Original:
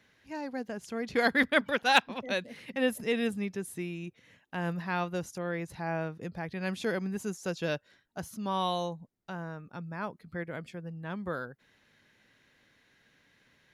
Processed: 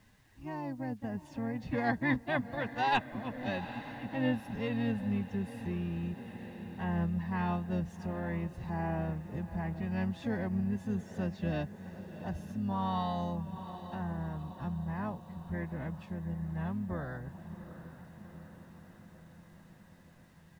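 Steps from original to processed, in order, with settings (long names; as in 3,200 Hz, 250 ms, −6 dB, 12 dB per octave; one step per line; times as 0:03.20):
spectral tilt −2.5 dB per octave
phase-vocoder stretch with locked phases 1.5×
on a send: feedback delay with all-pass diffusion 764 ms, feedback 63%, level −15.5 dB
on the sum: pitch-shifted copies added −12 semitones −9 dB, +3 semitones −10 dB
in parallel at +2 dB: downward compressor 6 to 1, threshold −37 dBFS, peak gain reduction 18 dB
on the sum: high-shelf EQ 6,400 Hz −9 dB
comb filter 1.1 ms, depth 46%
bit reduction 10 bits
level −9 dB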